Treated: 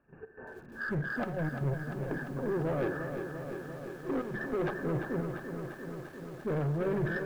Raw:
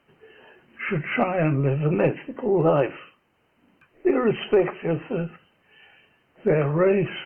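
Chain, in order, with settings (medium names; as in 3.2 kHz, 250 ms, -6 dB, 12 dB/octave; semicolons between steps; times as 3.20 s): knee-point frequency compression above 1.5 kHz 4:1; tilt EQ -2.5 dB/octave; reverse; compression 10:1, threshold -23 dBFS, peak gain reduction 13 dB; reverse; saturation -27 dBFS, distortion -11 dB; trance gate ".x.xxxxxxx.x.x.." 121 bpm -12 dB; spring tank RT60 2.2 s, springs 56 ms, chirp 25 ms, DRR 19.5 dB; in parallel at -1.5 dB: peak limiter -37 dBFS, peak gain reduction 11 dB; on the sum: bit-crushed delay 346 ms, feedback 80%, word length 9-bit, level -7.5 dB; trim -3 dB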